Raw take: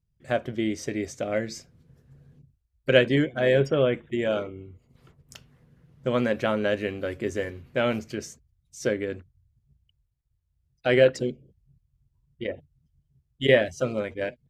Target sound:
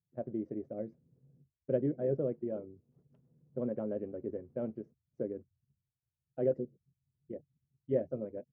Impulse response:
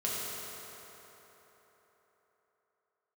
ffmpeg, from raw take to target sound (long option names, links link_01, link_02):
-af "asuperpass=centerf=260:order=4:qfactor=0.6,atempo=1.7,volume=-8.5dB"